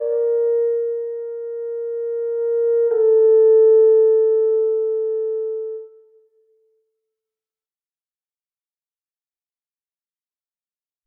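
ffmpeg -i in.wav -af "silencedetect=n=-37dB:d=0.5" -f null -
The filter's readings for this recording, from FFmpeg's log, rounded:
silence_start: 5.86
silence_end: 11.06 | silence_duration: 5.20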